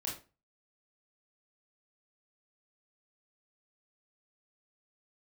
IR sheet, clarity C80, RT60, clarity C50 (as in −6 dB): 12.5 dB, 0.30 s, 6.5 dB